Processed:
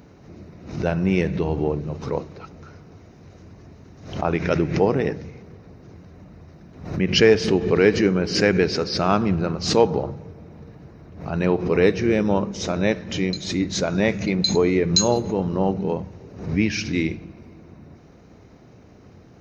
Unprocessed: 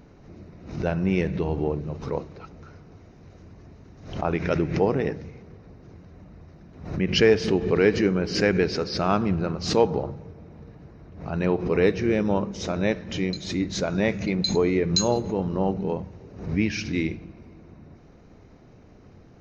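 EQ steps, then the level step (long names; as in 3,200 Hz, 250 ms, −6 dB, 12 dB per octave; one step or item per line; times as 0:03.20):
high-pass filter 59 Hz
high-shelf EQ 6,400 Hz +5.5 dB
+3.0 dB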